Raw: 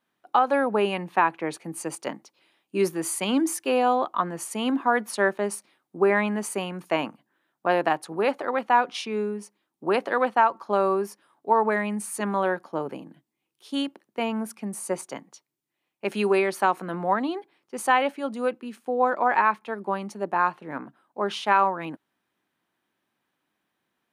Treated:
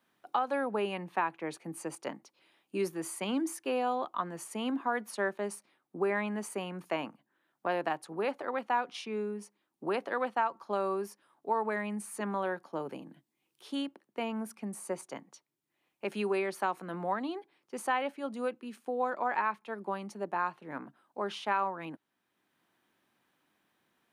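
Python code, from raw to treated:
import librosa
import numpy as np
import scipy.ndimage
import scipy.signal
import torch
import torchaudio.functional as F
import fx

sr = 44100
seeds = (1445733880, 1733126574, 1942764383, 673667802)

y = fx.band_squash(x, sr, depth_pct=40)
y = y * librosa.db_to_amplitude(-9.0)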